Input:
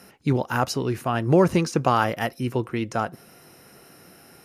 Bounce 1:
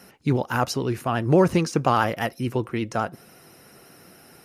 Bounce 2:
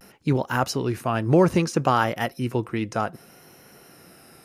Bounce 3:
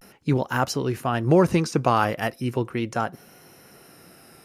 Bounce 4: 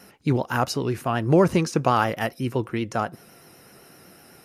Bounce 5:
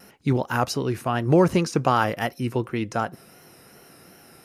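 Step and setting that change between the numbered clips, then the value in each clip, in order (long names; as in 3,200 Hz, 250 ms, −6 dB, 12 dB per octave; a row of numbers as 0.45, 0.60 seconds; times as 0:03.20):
pitch vibrato, speed: 14, 0.63, 0.39, 7.9, 2.7 Hertz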